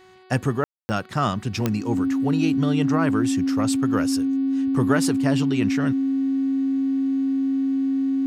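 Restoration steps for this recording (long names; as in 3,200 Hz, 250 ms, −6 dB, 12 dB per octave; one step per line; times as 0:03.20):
click removal
hum removal 372.7 Hz, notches 13
notch filter 270 Hz, Q 30
ambience match 0:00.64–0:00.89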